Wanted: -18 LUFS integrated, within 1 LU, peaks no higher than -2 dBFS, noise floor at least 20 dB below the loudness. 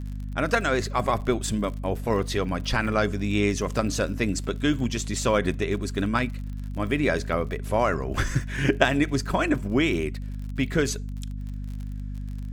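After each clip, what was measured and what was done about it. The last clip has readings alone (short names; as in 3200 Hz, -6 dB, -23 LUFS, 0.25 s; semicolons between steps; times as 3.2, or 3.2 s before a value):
ticks 47/s; hum 50 Hz; harmonics up to 250 Hz; hum level -30 dBFS; loudness -26.0 LUFS; peak -6.0 dBFS; loudness target -18.0 LUFS
-> de-click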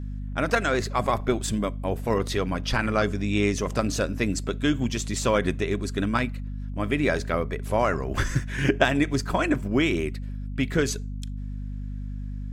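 ticks 0.24/s; hum 50 Hz; harmonics up to 250 Hz; hum level -30 dBFS
-> de-hum 50 Hz, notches 5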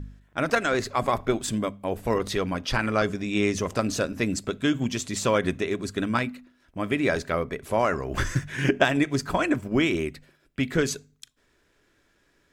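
hum none; loudness -26.5 LUFS; peak -7.0 dBFS; loudness target -18.0 LUFS
-> gain +8.5 dB; limiter -2 dBFS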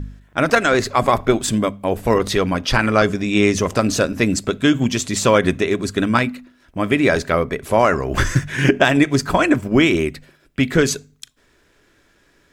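loudness -18.0 LUFS; peak -2.0 dBFS; noise floor -58 dBFS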